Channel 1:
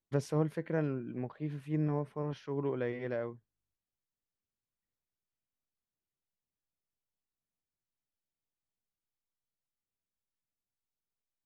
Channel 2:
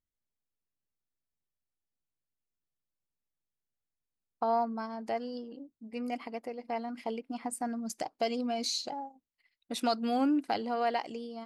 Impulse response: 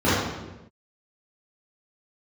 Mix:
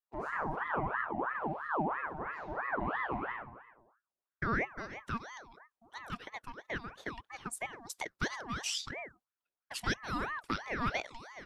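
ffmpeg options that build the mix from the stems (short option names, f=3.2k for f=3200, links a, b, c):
-filter_complex "[0:a]highshelf=f=4.8k:g=-7,acompressor=threshold=-32dB:ratio=6,volume=-16dB,asplit=2[a][b];[b]volume=-12.5dB[c];[1:a]agate=range=-33dB:threshold=-57dB:ratio=3:detection=peak,highpass=510,volume=-5.5dB[d];[2:a]atrim=start_sample=2205[e];[c][e]afir=irnorm=-1:irlink=0[f];[a][d][f]amix=inputs=3:normalize=0,dynaudnorm=f=110:g=3:m=6dB,aeval=exprs='val(0)*sin(2*PI*1000*n/s+1000*0.55/3*sin(2*PI*3*n/s))':c=same"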